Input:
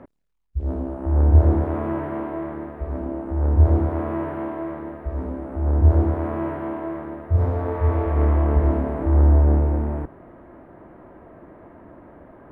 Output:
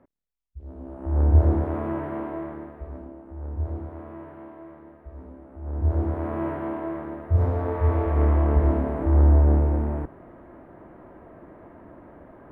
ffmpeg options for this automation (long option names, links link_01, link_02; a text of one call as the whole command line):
ffmpeg -i in.wav -af "volume=9.5dB,afade=type=in:start_time=0.74:duration=0.49:silence=0.251189,afade=type=out:start_time=2.32:duration=0.83:silence=0.281838,afade=type=in:start_time=5.61:duration=0.86:silence=0.237137" out.wav